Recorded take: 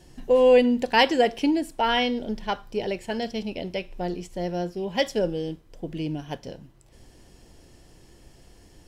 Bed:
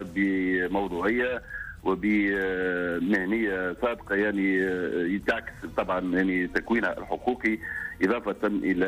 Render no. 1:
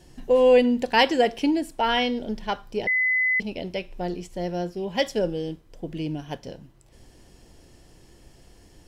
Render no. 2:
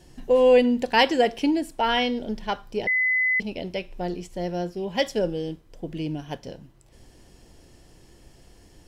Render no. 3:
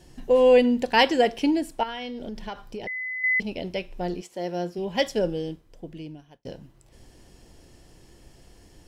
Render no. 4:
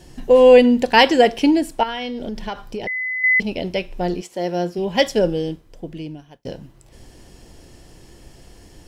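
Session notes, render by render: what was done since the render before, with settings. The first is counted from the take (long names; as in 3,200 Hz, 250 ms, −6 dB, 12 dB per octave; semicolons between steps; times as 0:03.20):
0:02.87–0:03.40: beep over 2,020 Hz −19 dBFS
no processing that can be heard
0:01.83–0:03.24: downward compressor 12 to 1, threshold −30 dBFS; 0:04.20–0:04.77: high-pass filter 450 Hz → 110 Hz; 0:05.34–0:06.45: fade out linear
level +7 dB; brickwall limiter −1 dBFS, peak gain reduction 1.5 dB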